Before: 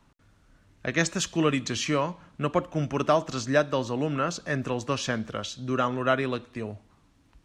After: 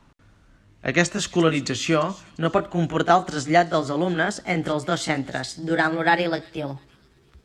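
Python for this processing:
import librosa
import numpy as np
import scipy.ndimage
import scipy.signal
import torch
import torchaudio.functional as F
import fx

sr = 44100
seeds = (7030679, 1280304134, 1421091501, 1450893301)

y = fx.pitch_glide(x, sr, semitones=5.5, runs='starting unshifted')
y = fx.high_shelf(y, sr, hz=8600.0, db=-8.5)
y = fx.echo_wet_highpass(y, sr, ms=348, feedback_pct=34, hz=4400.0, wet_db=-15.5)
y = y * librosa.db_to_amplitude(6.0)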